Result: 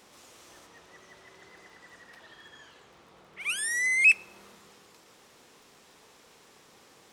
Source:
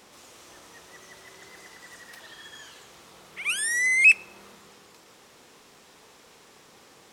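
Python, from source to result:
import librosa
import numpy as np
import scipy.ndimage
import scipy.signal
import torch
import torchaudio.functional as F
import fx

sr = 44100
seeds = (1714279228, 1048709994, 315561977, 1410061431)

y = fx.lowpass(x, sr, hz=fx.line((0.65, 3900.0), (3.39, 1900.0)), slope=6, at=(0.65, 3.39), fade=0.02)
y = fx.dmg_crackle(y, sr, seeds[0], per_s=21.0, level_db=-47.0)
y = F.gain(torch.from_numpy(y), -3.5).numpy()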